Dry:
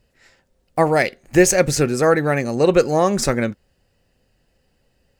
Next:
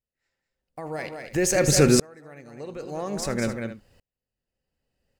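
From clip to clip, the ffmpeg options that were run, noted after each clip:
-filter_complex "[0:a]alimiter=limit=0.316:level=0:latency=1:release=26,asplit=2[s0][s1];[s1]aecho=0:1:78|198|267:0.119|0.335|0.106[s2];[s0][s2]amix=inputs=2:normalize=0,aeval=exprs='val(0)*pow(10,-37*if(lt(mod(-0.5*n/s,1),2*abs(-0.5)/1000),1-mod(-0.5*n/s,1)/(2*abs(-0.5)/1000),(mod(-0.5*n/s,1)-2*abs(-0.5)/1000)/(1-2*abs(-0.5)/1000))/20)':c=same,volume=1.88"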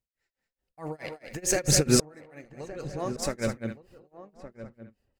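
-filter_complex "[0:a]tremolo=f=4.6:d=0.97,aphaser=in_gain=1:out_gain=1:delay=4.6:decay=0.34:speed=1.1:type=triangular,asplit=2[s0][s1];[s1]adelay=1166,volume=0.224,highshelf=f=4000:g=-26.2[s2];[s0][s2]amix=inputs=2:normalize=0"

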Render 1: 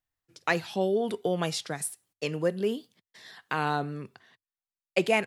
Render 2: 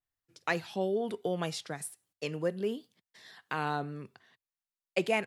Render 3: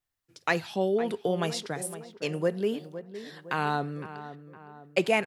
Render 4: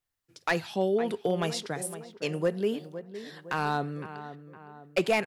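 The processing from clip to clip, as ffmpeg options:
-af "adynamicequalizer=threshold=0.00631:dfrequency=3000:dqfactor=0.7:tfrequency=3000:tqfactor=0.7:attack=5:release=100:ratio=0.375:range=2:mode=cutabove:tftype=highshelf,volume=0.596"
-filter_complex "[0:a]asplit=2[s0][s1];[s1]adelay=511,lowpass=f=1800:p=1,volume=0.237,asplit=2[s2][s3];[s3]adelay=511,lowpass=f=1800:p=1,volume=0.49,asplit=2[s4][s5];[s5]adelay=511,lowpass=f=1800:p=1,volume=0.49,asplit=2[s6][s7];[s7]adelay=511,lowpass=f=1800:p=1,volume=0.49,asplit=2[s8][s9];[s9]adelay=511,lowpass=f=1800:p=1,volume=0.49[s10];[s0][s2][s4][s6][s8][s10]amix=inputs=6:normalize=0,volume=1.68"
-af "volume=7.5,asoftclip=hard,volume=0.133"

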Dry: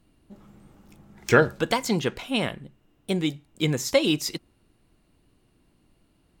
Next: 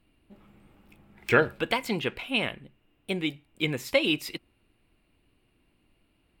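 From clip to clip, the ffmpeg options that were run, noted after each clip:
-af "equalizer=f=160:t=o:w=0.67:g=-4,equalizer=f=2500:t=o:w=0.67:g=9,equalizer=f=6300:t=o:w=0.67:g=-11,volume=0.631"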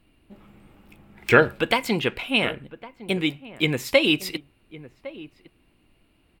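-filter_complex "[0:a]asplit=2[s0][s1];[s1]adelay=1108,volume=0.141,highshelf=f=4000:g=-24.9[s2];[s0][s2]amix=inputs=2:normalize=0,volume=1.88"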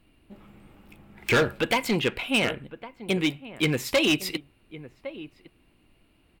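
-af "asoftclip=type=hard:threshold=0.141"

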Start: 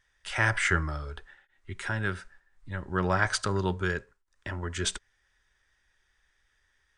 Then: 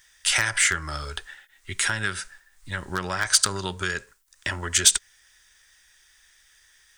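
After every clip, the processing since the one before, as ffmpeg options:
-af "acompressor=threshold=0.0316:ratio=10,aeval=exprs='0.0891*(cos(1*acos(clip(val(0)/0.0891,-1,1)))-cos(1*PI/2))+0.0112*(cos(2*acos(clip(val(0)/0.0891,-1,1)))-cos(2*PI/2))':c=same,crystalizer=i=9.5:c=0,volume=1.26"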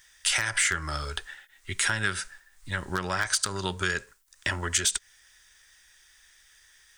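-af "alimiter=limit=0.266:level=0:latency=1:release=220"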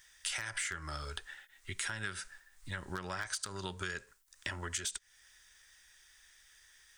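-af "acompressor=threshold=0.0141:ratio=2,volume=0.631"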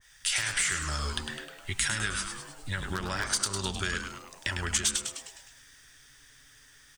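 -filter_complex "[0:a]lowshelf=f=200:g=5.5,asplit=8[s0][s1][s2][s3][s4][s5][s6][s7];[s1]adelay=103,afreqshift=-150,volume=0.473[s8];[s2]adelay=206,afreqshift=-300,volume=0.269[s9];[s3]adelay=309,afreqshift=-450,volume=0.153[s10];[s4]adelay=412,afreqshift=-600,volume=0.0881[s11];[s5]adelay=515,afreqshift=-750,volume=0.0501[s12];[s6]adelay=618,afreqshift=-900,volume=0.0285[s13];[s7]adelay=721,afreqshift=-1050,volume=0.0162[s14];[s0][s8][s9][s10][s11][s12][s13][s14]amix=inputs=8:normalize=0,adynamicequalizer=threshold=0.00251:dfrequency=1800:dqfactor=0.7:tfrequency=1800:tqfactor=0.7:attack=5:release=100:ratio=0.375:range=3:mode=boostabove:tftype=highshelf,volume=1.58"

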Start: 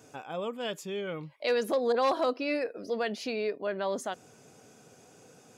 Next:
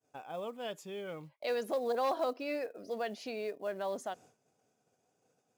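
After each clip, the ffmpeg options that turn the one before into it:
-af "equalizer=f=710:w=1.9:g=5.5,agate=range=0.0224:threshold=0.00631:ratio=3:detection=peak,acrusher=bits=7:mode=log:mix=0:aa=0.000001,volume=0.398"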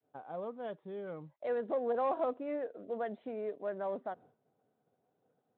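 -af "equalizer=f=2600:t=o:w=0.32:g=-12.5,adynamicsmooth=sensitivity=2:basefreq=1800" -ar 8000 -c:a libspeex -b:a 24k

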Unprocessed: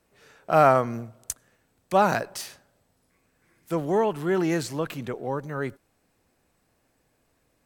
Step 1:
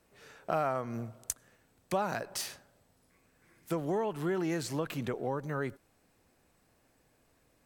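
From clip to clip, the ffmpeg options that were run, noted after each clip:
-af "acompressor=threshold=0.0316:ratio=4"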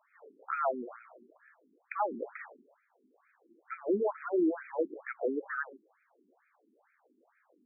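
-filter_complex "[0:a]asplit=2[s0][s1];[s1]alimiter=level_in=1.12:limit=0.0631:level=0:latency=1:release=27,volume=0.891,volume=0.944[s2];[s0][s2]amix=inputs=2:normalize=0,afftfilt=real='re*between(b*sr/1024,280*pow(1800/280,0.5+0.5*sin(2*PI*2.2*pts/sr))/1.41,280*pow(1800/280,0.5+0.5*sin(2*PI*2.2*pts/sr))*1.41)':imag='im*between(b*sr/1024,280*pow(1800/280,0.5+0.5*sin(2*PI*2.2*pts/sr))/1.41,280*pow(1800/280,0.5+0.5*sin(2*PI*2.2*pts/sr))*1.41)':win_size=1024:overlap=0.75,volume=1.19"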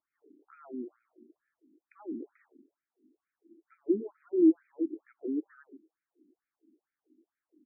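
-af "firequalizer=gain_entry='entry(200,0);entry(320,11);entry(530,-23);entry(1500,-20)':delay=0.05:min_phase=1,volume=0.794"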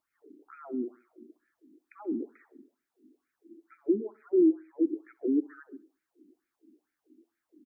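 -af "alimiter=limit=0.0794:level=0:latency=1:release=424,aecho=1:1:66|132|198:0.0794|0.0318|0.0127,volume=2"

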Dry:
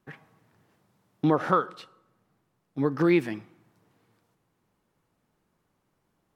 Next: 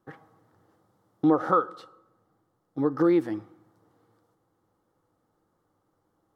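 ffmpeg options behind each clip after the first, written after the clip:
-filter_complex "[0:a]equalizer=f=100:t=o:w=0.33:g=8,equalizer=f=315:t=o:w=0.33:g=10,equalizer=f=500:t=o:w=0.33:g=10,equalizer=f=800:t=o:w=0.33:g=8,equalizer=f=1250:t=o:w=0.33:g=9,equalizer=f=2500:t=o:w=0.33:g=-12,asplit=2[s0][s1];[s1]acompressor=threshold=0.0708:ratio=6,volume=0.75[s2];[s0][s2]amix=inputs=2:normalize=0,volume=0.376"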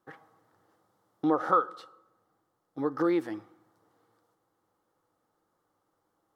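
-af "lowshelf=f=340:g=-10.5"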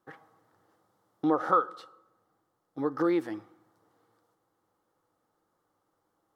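-af anull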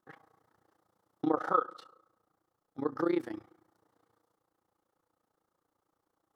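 -af "tremolo=f=29:d=0.889"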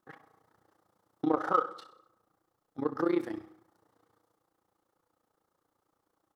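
-filter_complex "[0:a]asplit=2[s0][s1];[s1]asoftclip=type=tanh:threshold=0.0335,volume=0.282[s2];[s0][s2]amix=inputs=2:normalize=0,aecho=1:1:63|126|189|252:0.178|0.0836|0.0393|0.0185"

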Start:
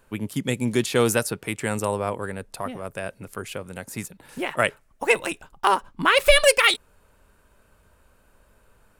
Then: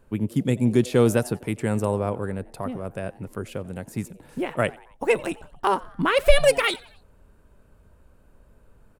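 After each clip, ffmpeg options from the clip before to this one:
-filter_complex "[0:a]tiltshelf=f=690:g=6.5,asplit=4[s0][s1][s2][s3];[s1]adelay=90,afreqshift=130,volume=0.0708[s4];[s2]adelay=180,afreqshift=260,volume=0.0355[s5];[s3]adelay=270,afreqshift=390,volume=0.0178[s6];[s0][s4][s5][s6]amix=inputs=4:normalize=0,volume=0.891"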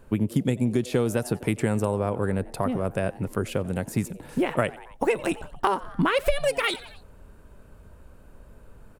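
-af "acompressor=threshold=0.0562:ratio=16,volume=2"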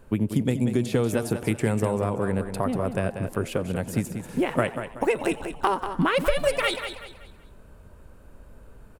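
-af "aecho=1:1:189|378|567|756:0.355|0.124|0.0435|0.0152"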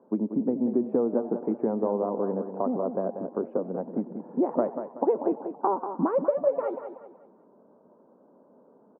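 -af "asuperpass=centerf=460:order=8:qfactor=0.58"

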